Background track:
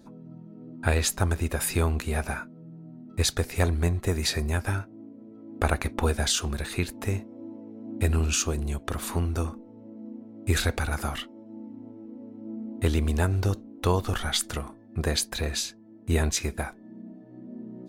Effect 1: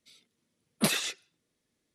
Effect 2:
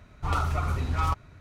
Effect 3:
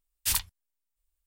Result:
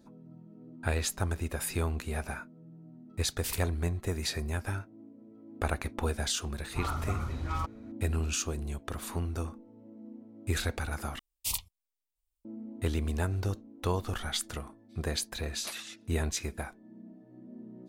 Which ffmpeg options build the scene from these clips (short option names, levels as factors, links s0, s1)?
-filter_complex "[3:a]asplit=2[s0][s1];[0:a]volume=0.473[s2];[2:a]bandreject=f=2700:w=18[s3];[s1]asuperstop=centerf=1600:order=4:qfactor=1.5[s4];[1:a]highpass=690[s5];[s2]asplit=2[s6][s7];[s6]atrim=end=11.194[s8];[s4]atrim=end=1.26,asetpts=PTS-STARTPTS,volume=0.531[s9];[s7]atrim=start=12.446[s10];[s0]atrim=end=1.26,asetpts=PTS-STARTPTS,volume=0.335,afade=t=in:d=0.004:c=hsin,afade=t=out:st=1.256:d=0.004:c=hsin,adelay=3180[s11];[s3]atrim=end=1.4,asetpts=PTS-STARTPTS,volume=0.447,afade=t=in:d=0.004:c=hsin,afade=t=out:st=1.396:d=0.004:c=hsin,adelay=6520[s12];[s5]atrim=end=1.94,asetpts=PTS-STARTPTS,volume=0.266,afade=t=in:d=0.1,afade=t=out:st=1.84:d=0.1,adelay=14830[s13];[s8][s9]acrossfade=d=0.004:c1=hsin:c2=hsin[s14];[s14][s10]acrossfade=d=0.004:c1=hsin:c2=hsin[s15];[s15][s11][s12][s13]amix=inputs=4:normalize=0"